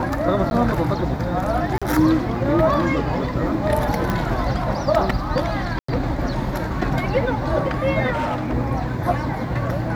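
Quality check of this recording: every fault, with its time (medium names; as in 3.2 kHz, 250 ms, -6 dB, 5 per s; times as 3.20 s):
0.50–0.51 s: dropout 11 ms
1.78–1.82 s: dropout 36 ms
4.10 s: pop -10 dBFS
5.79–5.88 s: dropout 94 ms
8.12–8.54 s: clipped -19.5 dBFS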